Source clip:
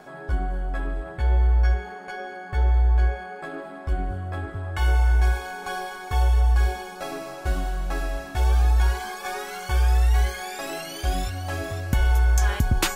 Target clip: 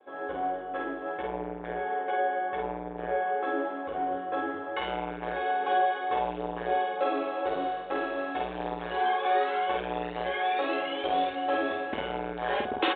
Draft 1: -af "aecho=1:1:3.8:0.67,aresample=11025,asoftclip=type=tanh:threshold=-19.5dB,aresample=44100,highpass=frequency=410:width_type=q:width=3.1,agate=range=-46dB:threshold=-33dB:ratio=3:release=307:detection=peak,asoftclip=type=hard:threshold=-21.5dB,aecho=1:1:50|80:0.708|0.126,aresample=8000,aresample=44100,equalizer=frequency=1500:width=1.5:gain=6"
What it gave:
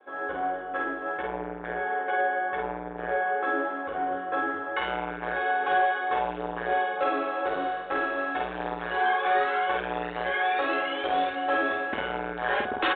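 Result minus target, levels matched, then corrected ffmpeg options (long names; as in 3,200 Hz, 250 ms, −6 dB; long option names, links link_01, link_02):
hard clipping: distortion +24 dB; 2,000 Hz band +4.5 dB
-af "aecho=1:1:3.8:0.67,aresample=11025,asoftclip=type=tanh:threshold=-19.5dB,aresample=44100,highpass=frequency=410:width_type=q:width=3.1,agate=range=-46dB:threshold=-33dB:ratio=3:release=307:detection=peak,asoftclip=type=hard:threshold=-14dB,aecho=1:1:50|80:0.708|0.126,aresample=8000,aresample=44100,equalizer=frequency=1500:width=1.5:gain=-2"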